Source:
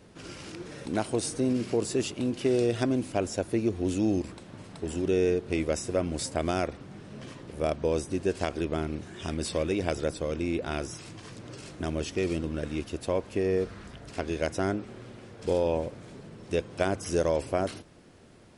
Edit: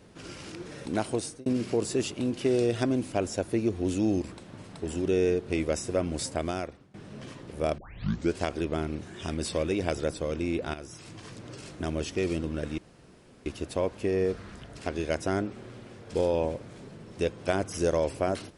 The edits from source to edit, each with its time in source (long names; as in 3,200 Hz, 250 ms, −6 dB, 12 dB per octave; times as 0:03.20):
0:01.12–0:01.46: fade out
0:06.28–0:06.94: fade out, to −19.5 dB
0:07.78: tape start 0.56 s
0:10.74–0:11.19: fade in, from −12.5 dB
0:12.78: splice in room tone 0.68 s